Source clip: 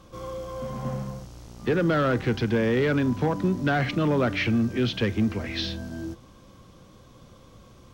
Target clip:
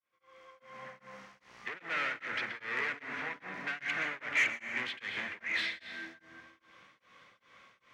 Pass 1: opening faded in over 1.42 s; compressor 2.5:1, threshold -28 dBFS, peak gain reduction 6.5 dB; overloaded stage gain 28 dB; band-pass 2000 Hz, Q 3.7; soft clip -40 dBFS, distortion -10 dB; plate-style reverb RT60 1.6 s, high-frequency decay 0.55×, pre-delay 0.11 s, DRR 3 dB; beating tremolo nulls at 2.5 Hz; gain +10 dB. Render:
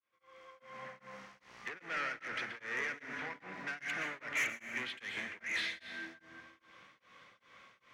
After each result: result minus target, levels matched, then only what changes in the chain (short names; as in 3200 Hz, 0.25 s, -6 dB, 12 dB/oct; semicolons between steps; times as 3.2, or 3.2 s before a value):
compressor: peak gain reduction +6.5 dB; soft clip: distortion +9 dB
remove: compressor 2.5:1, threshold -28 dBFS, peak gain reduction 6.5 dB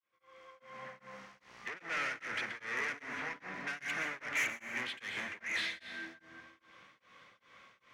soft clip: distortion +10 dB
change: soft clip -31 dBFS, distortion -20 dB